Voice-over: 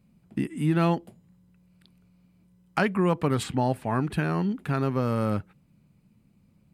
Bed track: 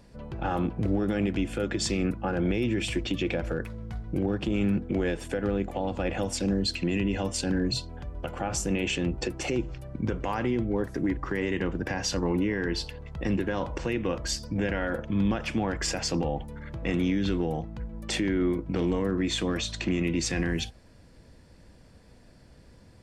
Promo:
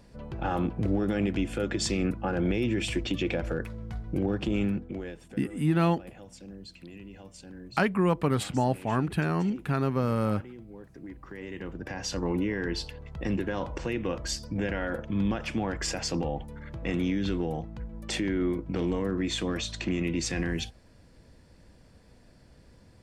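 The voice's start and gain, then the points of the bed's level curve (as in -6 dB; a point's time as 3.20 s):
5.00 s, -1.0 dB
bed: 4.58 s -0.5 dB
5.41 s -18.5 dB
10.81 s -18.5 dB
12.28 s -2 dB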